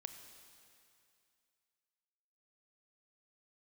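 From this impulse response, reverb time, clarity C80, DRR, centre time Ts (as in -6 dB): 2.5 s, 8.5 dB, 7.0 dB, 34 ms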